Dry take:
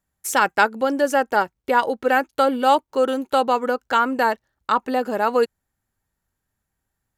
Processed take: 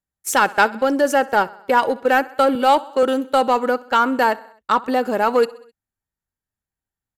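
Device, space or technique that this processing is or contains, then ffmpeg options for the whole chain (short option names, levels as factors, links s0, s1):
parallel distortion: -filter_complex "[0:a]agate=range=0.178:threshold=0.0398:ratio=16:detection=peak,asettb=1/sr,asplit=3[s0][s1][s2];[s0]atrim=end=2.554[s3];[s1]atrim=start=2.55:end=3.03,asetpts=PTS-STARTPTS,afade=t=in:d=0.004:c=qsin,afade=t=out:st=0.476:d=0.004:c=qsin,highpass=210[s4];[s2]atrim=start=3.026[s5];[s3][s4]acrossfade=d=0.004:c1=hsin:c2=qsin[s6];[s6][s5]acrossfade=d=0.004:c1=qsin:c2=hsin,aecho=1:1:65|130|195|260:0.075|0.0442|0.0261|0.0154,asplit=2[s7][s8];[s8]asoftclip=type=hard:threshold=0.112,volume=0.501[s9];[s7][s9]amix=inputs=2:normalize=0"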